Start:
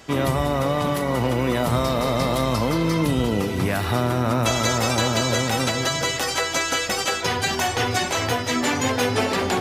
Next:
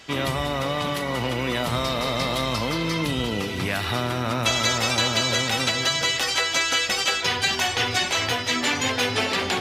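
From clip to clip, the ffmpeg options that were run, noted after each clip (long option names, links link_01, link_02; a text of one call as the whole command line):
ffmpeg -i in.wav -af "equalizer=frequency=3200:width_type=o:width=2.1:gain=10,volume=-5.5dB" out.wav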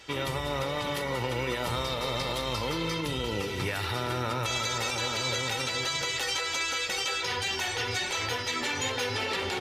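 ffmpeg -i in.wav -af "aecho=1:1:2.2:0.46,alimiter=limit=-16dB:level=0:latency=1:release=92,flanger=delay=3.4:depth=4.3:regen=-80:speed=1.2:shape=sinusoidal" out.wav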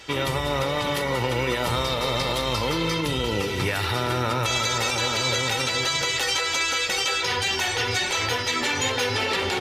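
ffmpeg -i in.wav -af "acontrast=55" out.wav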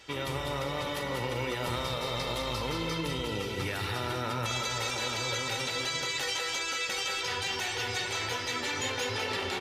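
ffmpeg -i in.wav -af "aecho=1:1:201:0.501,volume=-9dB" out.wav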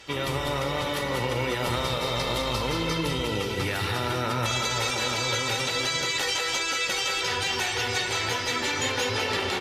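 ffmpeg -i in.wav -af "volume=5.5dB" -ar 32000 -c:a aac -b:a 64k out.aac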